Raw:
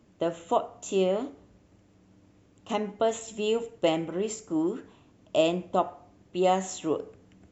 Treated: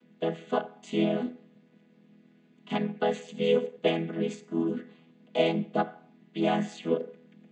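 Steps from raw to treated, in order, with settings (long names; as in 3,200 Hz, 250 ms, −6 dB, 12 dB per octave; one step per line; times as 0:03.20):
channel vocoder with a chord as carrier major triad, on E3
flat-topped bell 2,600 Hz +11 dB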